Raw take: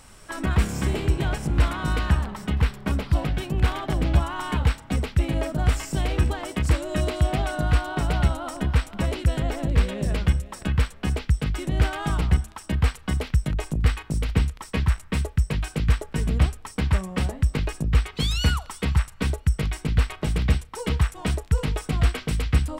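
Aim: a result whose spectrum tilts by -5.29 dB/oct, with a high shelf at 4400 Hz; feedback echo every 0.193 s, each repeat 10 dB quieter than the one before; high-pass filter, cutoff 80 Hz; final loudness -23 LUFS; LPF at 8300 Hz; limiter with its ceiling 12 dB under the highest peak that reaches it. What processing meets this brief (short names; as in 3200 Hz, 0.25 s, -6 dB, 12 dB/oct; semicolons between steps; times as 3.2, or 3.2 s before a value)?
HPF 80 Hz; LPF 8300 Hz; high shelf 4400 Hz -5.5 dB; limiter -21.5 dBFS; feedback echo 0.193 s, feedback 32%, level -10 dB; gain +9 dB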